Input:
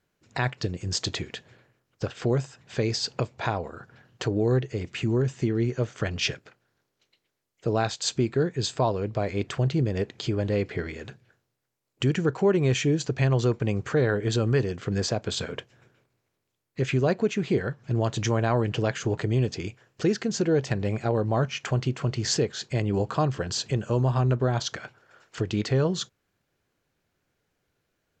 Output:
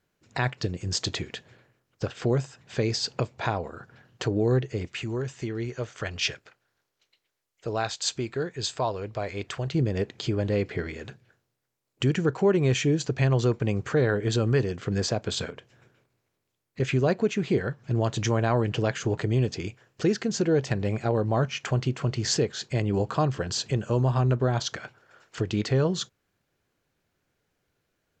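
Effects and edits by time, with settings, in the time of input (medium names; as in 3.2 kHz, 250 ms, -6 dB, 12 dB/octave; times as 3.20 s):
4.87–9.75 s: peaking EQ 190 Hz -8.5 dB 2.6 oct
15.50–16.80 s: compression, threshold -39 dBFS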